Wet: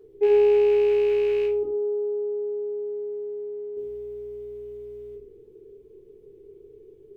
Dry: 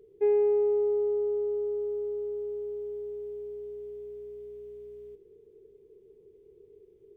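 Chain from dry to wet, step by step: rattle on loud lows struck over -40 dBFS, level -31 dBFS; 1.63–3.77 s: three-band isolator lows -22 dB, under 190 Hz, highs -16 dB, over 2.1 kHz; simulated room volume 250 m³, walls furnished, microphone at 3.4 m

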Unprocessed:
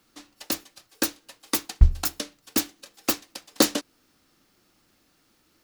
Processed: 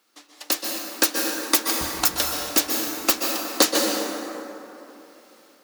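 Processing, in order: high-pass 400 Hz 12 dB/octave; level rider gain up to 10 dB; plate-style reverb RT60 3.1 s, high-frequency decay 0.45×, pre-delay 115 ms, DRR 0 dB; trim -1 dB

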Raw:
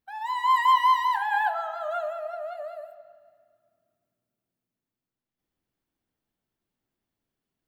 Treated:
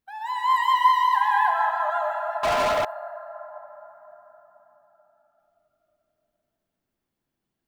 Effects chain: plate-style reverb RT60 4.7 s, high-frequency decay 0.35×, pre-delay 105 ms, DRR 1.5 dB; 2.43–2.85 s: waveshaping leveller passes 5

